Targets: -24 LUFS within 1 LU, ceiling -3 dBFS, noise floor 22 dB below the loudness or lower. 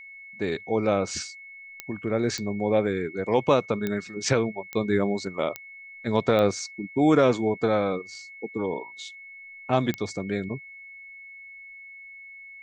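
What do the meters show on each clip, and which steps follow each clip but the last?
clicks 7; steady tone 2200 Hz; tone level -42 dBFS; loudness -26.0 LUFS; peak -7.0 dBFS; loudness target -24.0 LUFS
-> de-click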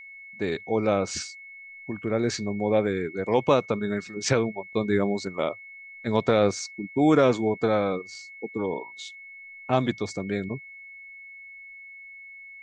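clicks 0; steady tone 2200 Hz; tone level -42 dBFS
-> notch 2200 Hz, Q 30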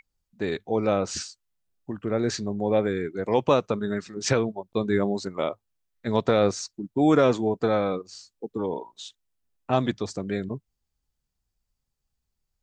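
steady tone none; loudness -26.0 LUFS; peak -7.0 dBFS; loudness target -24.0 LUFS
-> gain +2 dB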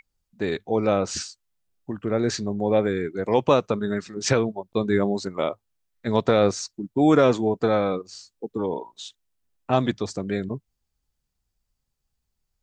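loudness -24.0 LUFS; peak -5.0 dBFS; noise floor -79 dBFS

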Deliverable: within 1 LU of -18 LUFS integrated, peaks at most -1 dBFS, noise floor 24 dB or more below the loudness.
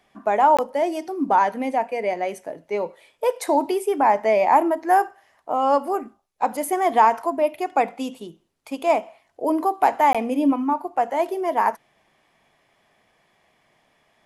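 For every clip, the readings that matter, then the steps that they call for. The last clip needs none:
dropouts 2; longest dropout 16 ms; loudness -21.5 LUFS; peak -5.5 dBFS; loudness target -18.0 LUFS
-> interpolate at 0.57/10.13, 16 ms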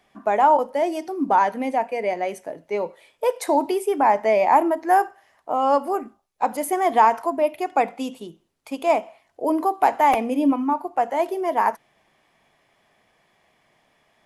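dropouts 0; loudness -21.5 LUFS; peak -5.5 dBFS; loudness target -18.0 LUFS
-> gain +3.5 dB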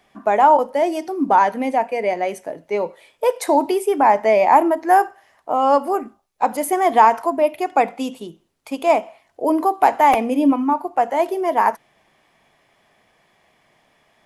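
loudness -18.0 LUFS; peak -2.0 dBFS; noise floor -61 dBFS

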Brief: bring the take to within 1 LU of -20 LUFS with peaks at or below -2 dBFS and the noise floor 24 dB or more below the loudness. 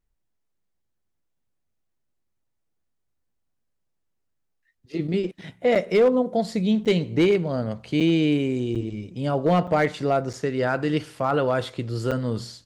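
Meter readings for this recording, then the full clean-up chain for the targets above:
clipped 0.3%; flat tops at -12.5 dBFS; dropouts 7; longest dropout 6.6 ms; loudness -23.5 LUFS; peak -12.5 dBFS; loudness target -20.0 LUFS
-> clip repair -12.5 dBFS; interpolate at 5.75/6.85/8/8.75/9.67/10.33/12.11, 6.6 ms; gain +3.5 dB

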